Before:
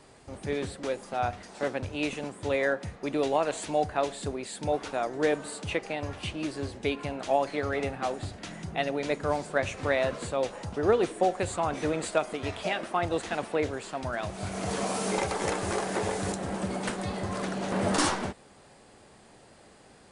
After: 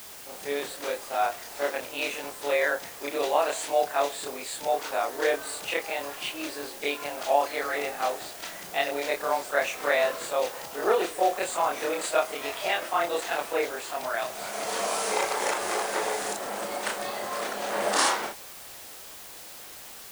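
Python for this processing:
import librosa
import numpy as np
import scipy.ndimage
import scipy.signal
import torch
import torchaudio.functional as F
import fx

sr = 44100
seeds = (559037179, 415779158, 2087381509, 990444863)

y = fx.frame_reverse(x, sr, frame_ms=70.0)
y = scipy.signal.sosfilt(scipy.signal.butter(2, 540.0, 'highpass', fs=sr, output='sos'), y)
y = fx.dmg_noise_colour(y, sr, seeds[0], colour='white', level_db=-52.0)
y = y * librosa.db_to_amplitude(7.5)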